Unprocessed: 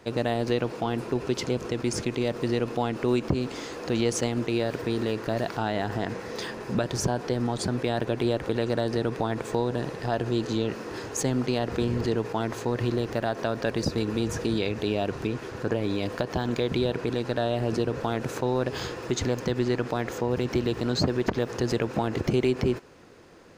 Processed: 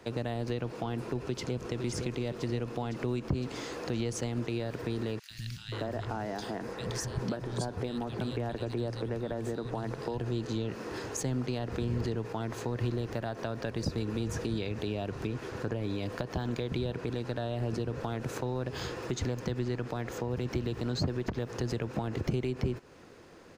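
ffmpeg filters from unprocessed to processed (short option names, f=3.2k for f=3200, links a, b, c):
-filter_complex "[0:a]asplit=2[a][b];[b]afade=t=in:st=1.21:d=0.01,afade=t=out:st=1.69:d=0.01,aecho=0:1:510|1020|1530|2040|2550|3060|3570|4080|4590:0.421697|0.274103|0.178167|0.115808|0.0752755|0.048929|0.0318039|0.0206725|0.0134371[c];[a][c]amix=inputs=2:normalize=0,asettb=1/sr,asplit=3[d][e][f];[d]atrim=end=5.194[g];[e]atrim=start=5.19:end=10.18,asetpts=PTS-STARTPTS,afade=t=in:d=0.004:c=qsin,afade=t=out:st=4.986:d=0.004:c=qsin,acrossover=split=150|2400[h][i][j];[h]adelay=110[k];[i]adelay=530[l];[k][l][j]amix=inputs=3:normalize=0,atrim=end_sample=220059[m];[f]atrim=start=10.176[n];[g][m]acrossfade=d=0.004:c1=hsin:c2=qsin[o];[o][n]acrossfade=d=0.004:c1=qsin:c2=hsin,acrossover=split=160[p][q];[q]acompressor=threshold=-33dB:ratio=3[r];[p][r]amix=inputs=2:normalize=0,volume=-1.5dB"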